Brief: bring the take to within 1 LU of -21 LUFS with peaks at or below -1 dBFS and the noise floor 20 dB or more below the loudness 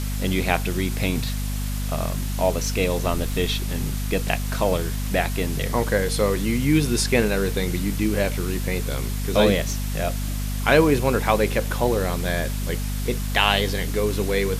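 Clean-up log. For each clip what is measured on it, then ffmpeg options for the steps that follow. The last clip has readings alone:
hum 50 Hz; highest harmonic 250 Hz; hum level -24 dBFS; noise floor -26 dBFS; noise floor target -43 dBFS; loudness -23.0 LUFS; peak level -2.0 dBFS; loudness target -21.0 LUFS
-> -af "bandreject=f=50:t=h:w=6,bandreject=f=100:t=h:w=6,bandreject=f=150:t=h:w=6,bandreject=f=200:t=h:w=6,bandreject=f=250:t=h:w=6"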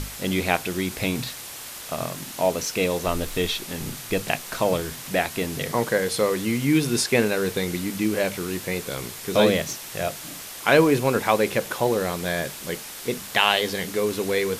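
hum not found; noise floor -38 dBFS; noise floor target -44 dBFS
-> -af "afftdn=nr=6:nf=-38"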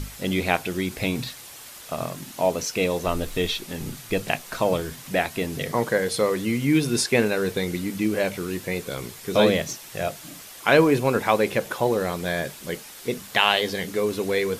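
noise floor -43 dBFS; noise floor target -45 dBFS
-> -af "afftdn=nr=6:nf=-43"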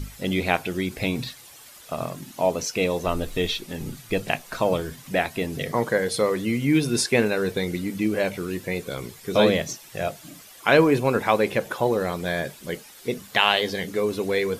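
noise floor -47 dBFS; loudness -24.5 LUFS; peak level -2.5 dBFS; loudness target -21.0 LUFS
-> -af "volume=1.5,alimiter=limit=0.891:level=0:latency=1"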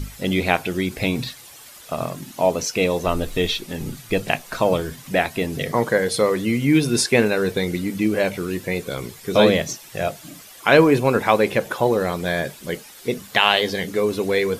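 loudness -21.0 LUFS; peak level -1.0 dBFS; noise floor -43 dBFS

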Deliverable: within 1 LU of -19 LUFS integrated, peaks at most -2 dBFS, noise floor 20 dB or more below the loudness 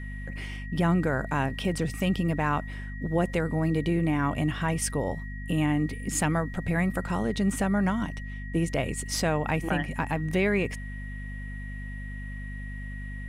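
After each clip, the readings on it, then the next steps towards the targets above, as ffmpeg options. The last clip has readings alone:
hum 50 Hz; highest harmonic 250 Hz; hum level -34 dBFS; steady tone 1.9 kHz; tone level -43 dBFS; loudness -28.5 LUFS; peak level -14.0 dBFS; loudness target -19.0 LUFS
-> -af "bandreject=f=50:t=h:w=6,bandreject=f=100:t=h:w=6,bandreject=f=150:t=h:w=6,bandreject=f=200:t=h:w=6,bandreject=f=250:t=h:w=6"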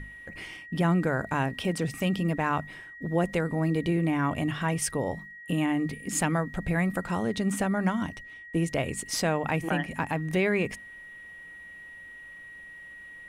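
hum not found; steady tone 1.9 kHz; tone level -43 dBFS
-> -af "bandreject=f=1900:w=30"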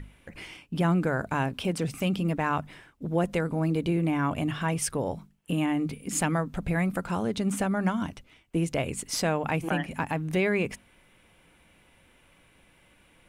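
steady tone not found; loudness -28.5 LUFS; peak level -14.5 dBFS; loudness target -19.0 LUFS
-> -af "volume=2.99"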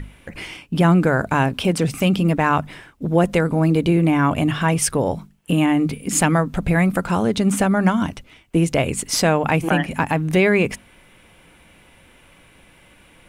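loudness -19.0 LUFS; peak level -5.0 dBFS; noise floor -52 dBFS

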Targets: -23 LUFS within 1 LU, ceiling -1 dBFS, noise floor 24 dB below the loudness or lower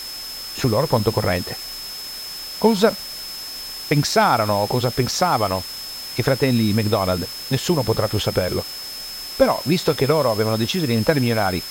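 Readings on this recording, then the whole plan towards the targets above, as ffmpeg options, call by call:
steady tone 5.2 kHz; tone level -31 dBFS; noise floor -32 dBFS; noise floor target -45 dBFS; loudness -21.0 LUFS; peak level -2.5 dBFS; loudness target -23.0 LUFS
-> -af "bandreject=f=5200:w=30"
-af "afftdn=nr=13:nf=-32"
-af "volume=0.794"

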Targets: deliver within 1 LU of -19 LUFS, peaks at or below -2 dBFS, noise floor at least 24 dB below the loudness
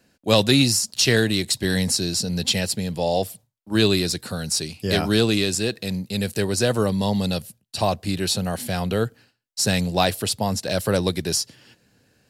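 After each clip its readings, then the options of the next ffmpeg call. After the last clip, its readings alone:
loudness -22.0 LUFS; peak level -3.0 dBFS; loudness target -19.0 LUFS
-> -af "volume=1.41,alimiter=limit=0.794:level=0:latency=1"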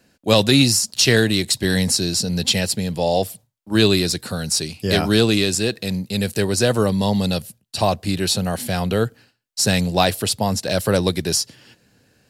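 loudness -19.0 LUFS; peak level -2.0 dBFS; noise floor -64 dBFS

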